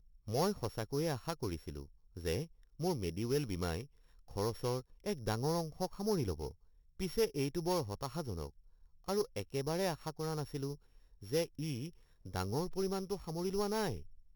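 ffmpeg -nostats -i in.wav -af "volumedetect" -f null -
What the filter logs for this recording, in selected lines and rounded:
mean_volume: -38.1 dB
max_volume: -23.2 dB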